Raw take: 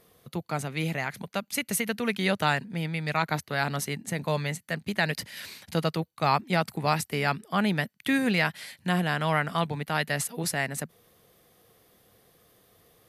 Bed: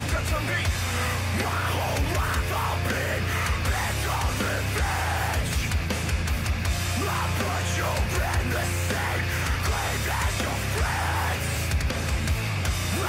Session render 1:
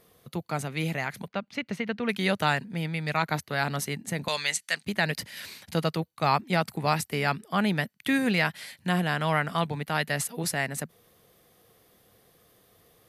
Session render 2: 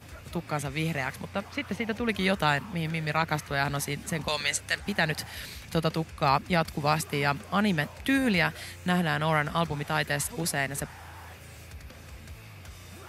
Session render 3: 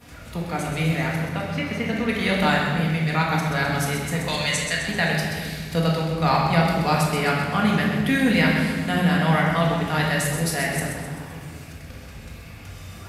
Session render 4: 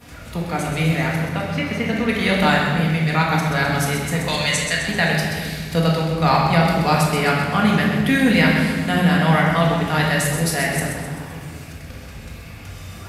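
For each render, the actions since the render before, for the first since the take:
1.28–2.09 air absorption 230 m; 4.28–4.85 weighting filter ITU-R 468
add bed -19.5 dB
split-band echo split 440 Hz, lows 0.353 s, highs 0.129 s, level -7 dB; shoebox room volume 610 m³, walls mixed, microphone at 1.8 m
gain +3.5 dB; limiter -3 dBFS, peak gain reduction 1.5 dB

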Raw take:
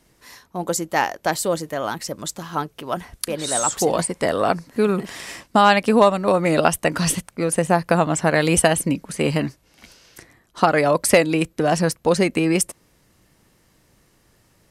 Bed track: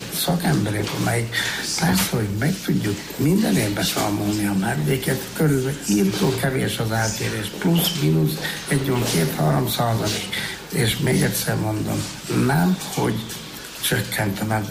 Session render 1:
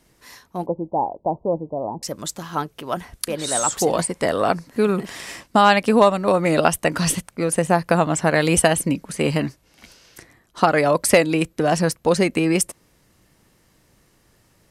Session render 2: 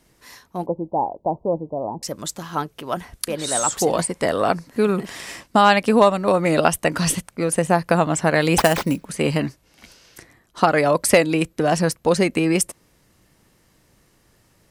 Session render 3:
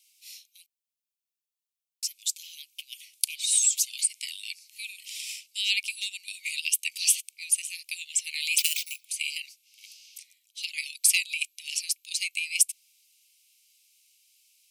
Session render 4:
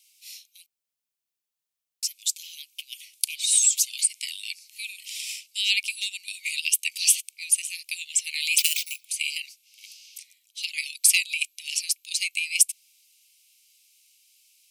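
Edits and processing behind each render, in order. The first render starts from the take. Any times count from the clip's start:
0.66–2.03 steep low-pass 960 Hz 72 dB/oct
8.58–9.05 sample-rate reducer 10000 Hz
steep high-pass 2300 Hz 96 dB/oct; high shelf 9600 Hz +3.5 dB
gain +3 dB; limiter -1 dBFS, peak gain reduction 2.5 dB

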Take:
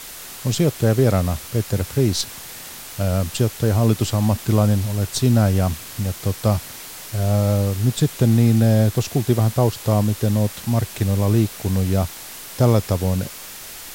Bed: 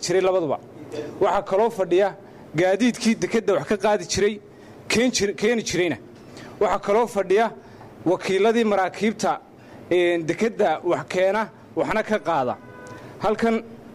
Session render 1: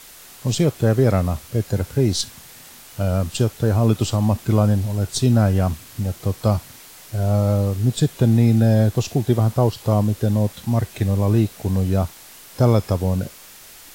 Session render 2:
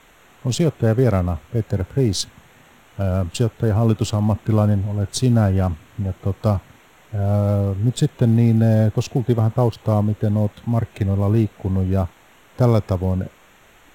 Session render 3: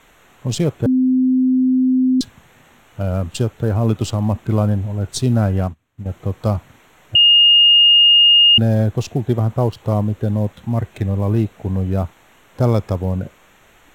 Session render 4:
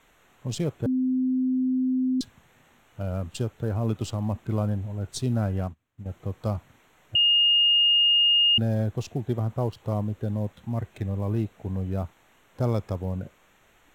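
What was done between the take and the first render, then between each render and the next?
noise print and reduce 7 dB
Wiener smoothing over 9 samples
0.86–2.21 bleep 257 Hz -11.5 dBFS; 5.6–6.06 upward expander 2.5:1, over -32 dBFS; 7.15–8.58 bleep 2840 Hz -7 dBFS
gain -9.5 dB

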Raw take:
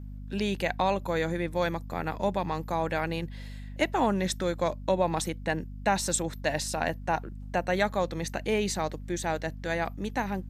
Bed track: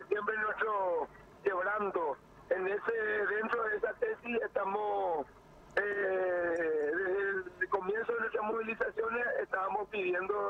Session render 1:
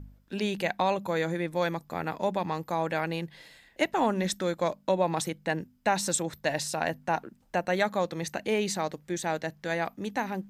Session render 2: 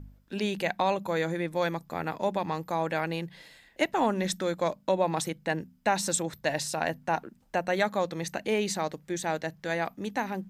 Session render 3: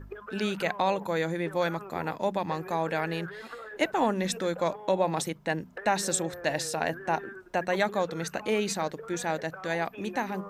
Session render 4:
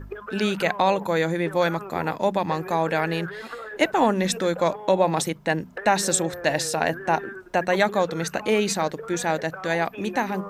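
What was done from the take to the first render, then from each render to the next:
de-hum 50 Hz, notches 5
notches 60/120/180 Hz
add bed track -9.5 dB
gain +6 dB

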